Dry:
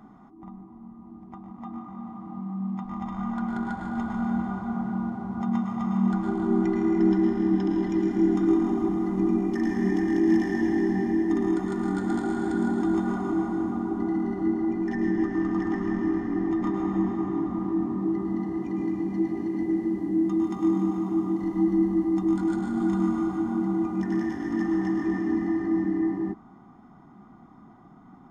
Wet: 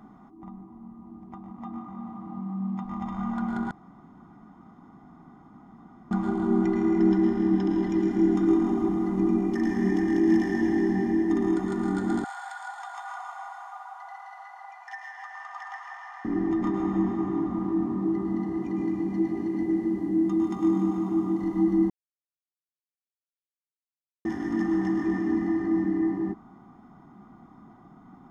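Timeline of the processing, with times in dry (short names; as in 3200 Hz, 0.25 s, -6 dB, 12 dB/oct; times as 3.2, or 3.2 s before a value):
3.71–6.11 room tone
12.24–16.25 steep high-pass 710 Hz 72 dB/oct
21.9–24.25 mute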